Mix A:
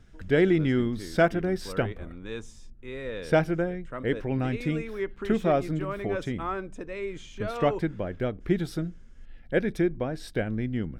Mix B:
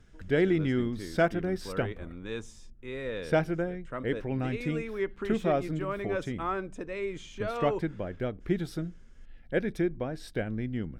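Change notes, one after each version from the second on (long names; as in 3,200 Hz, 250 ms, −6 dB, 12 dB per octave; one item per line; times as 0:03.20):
background −3.5 dB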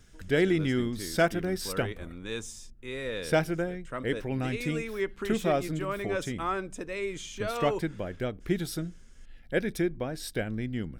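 master: remove low-pass filter 2,000 Hz 6 dB per octave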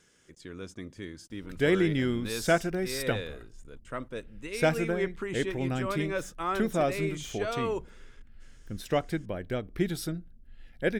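background: entry +1.30 s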